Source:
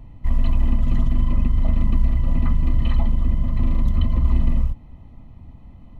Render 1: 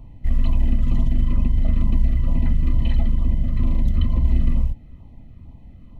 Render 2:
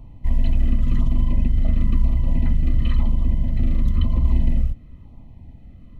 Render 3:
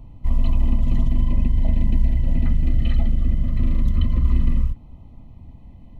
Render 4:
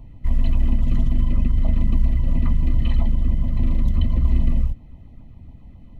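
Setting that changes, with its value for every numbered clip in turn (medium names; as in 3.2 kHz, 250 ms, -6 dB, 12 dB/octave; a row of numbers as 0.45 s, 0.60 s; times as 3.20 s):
LFO notch, rate: 2.2 Hz, 0.99 Hz, 0.21 Hz, 7.3 Hz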